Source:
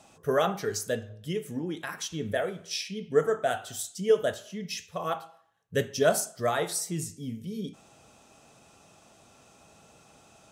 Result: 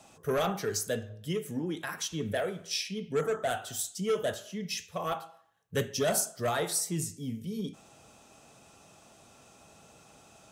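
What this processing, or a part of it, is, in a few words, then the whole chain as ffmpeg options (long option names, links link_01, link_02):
one-band saturation: -filter_complex "[0:a]acrossover=split=200|2900[link_01][link_02][link_03];[link_02]asoftclip=type=tanh:threshold=-24.5dB[link_04];[link_01][link_04][link_03]amix=inputs=3:normalize=0,highshelf=frequency=11000:gain=4"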